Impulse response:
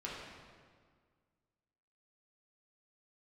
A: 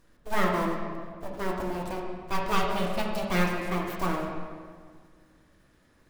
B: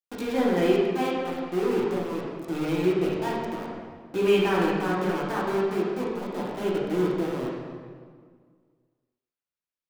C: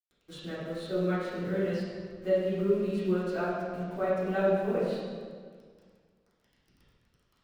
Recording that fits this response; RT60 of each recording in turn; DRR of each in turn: B; 1.8 s, 1.8 s, 1.8 s; -1.5 dB, -6.0 dB, -12.5 dB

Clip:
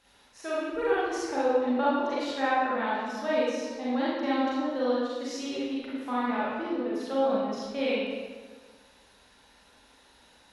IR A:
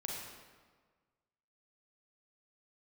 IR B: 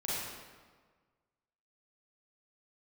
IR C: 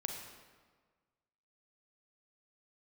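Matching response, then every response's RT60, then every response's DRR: B; 1.5 s, 1.5 s, 1.5 s; -2.5 dB, -8.5 dB, 2.0 dB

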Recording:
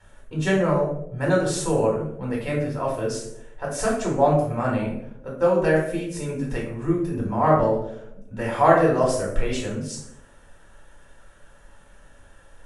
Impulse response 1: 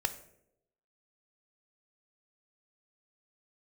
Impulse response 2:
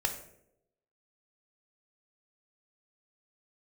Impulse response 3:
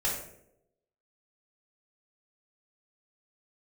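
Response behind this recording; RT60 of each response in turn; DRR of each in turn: 3; 0.80 s, 0.80 s, 0.80 s; 10.5 dB, 5.5 dB, -3.5 dB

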